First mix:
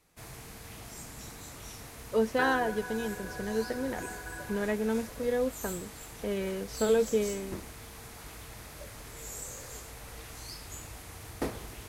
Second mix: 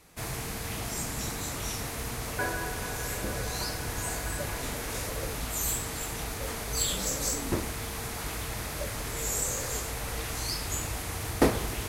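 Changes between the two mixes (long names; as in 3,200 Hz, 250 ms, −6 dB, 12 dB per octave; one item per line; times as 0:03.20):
speech: muted
first sound +11.0 dB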